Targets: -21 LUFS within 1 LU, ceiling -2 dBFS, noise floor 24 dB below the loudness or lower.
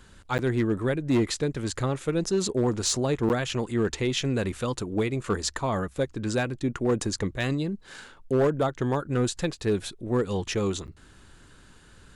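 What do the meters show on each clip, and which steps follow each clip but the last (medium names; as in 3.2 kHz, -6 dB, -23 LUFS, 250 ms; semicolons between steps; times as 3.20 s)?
clipped samples 0.8%; clipping level -17.5 dBFS; dropouts 3; longest dropout 9.3 ms; loudness -27.5 LUFS; peak level -17.5 dBFS; loudness target -21.0 LUFS
-> clip repair -17.5 dBFS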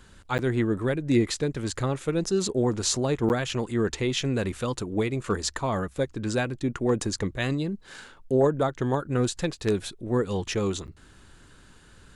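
clipped samples 0.0%; dropouts 3; longest dropout 9.3 ms
-> interpolate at 0.38/3.29/10.87 s, 9.3 ms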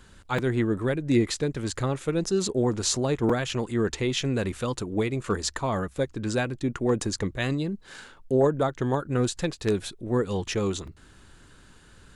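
dropouts 0; loudness -27.0 LUFS; peak level -8.5 dBFS; loudness target -21.0 LUFS
-> trim +6 dB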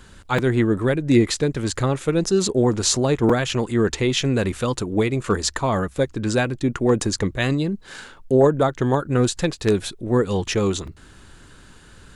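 loudness -21.0 LUFS; peak level -2.5 dBFS; noise floor -47 dBFS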